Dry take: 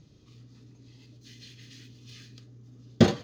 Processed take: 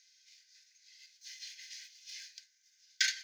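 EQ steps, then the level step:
Chebyshev high-pass with heavy ripple 1,500 Hz, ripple 9 dB
spectral tilt +3.5 dB per octave
high-shelf EQ 2,400 Hz −11 dB
+9.0 dB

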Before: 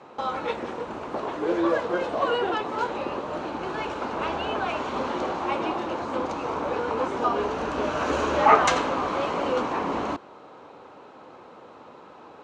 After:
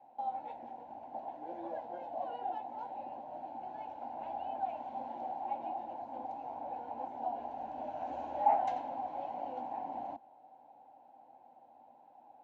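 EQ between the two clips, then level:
pair of resonant band-passes 420 Hz, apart 1.8 octaves
phaser with its sweep stopped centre 500 Hz, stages 4
+1.0 dB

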